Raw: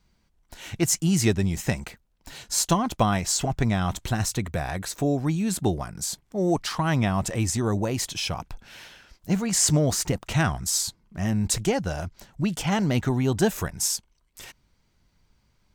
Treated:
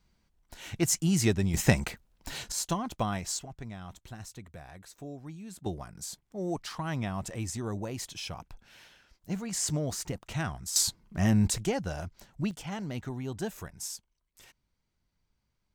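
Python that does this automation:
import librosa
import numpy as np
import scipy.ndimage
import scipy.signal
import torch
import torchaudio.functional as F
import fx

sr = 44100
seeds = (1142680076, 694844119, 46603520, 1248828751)

y = fx.gain(x, sr, db=fx.steps((0.0, -4.0), (1.54, 3.0), (2.52, -9.0), (3.39, -18.5), (5.66, -10.0), (10.76, 1.0), (11.5, -6.0), (12.51, -13.0)))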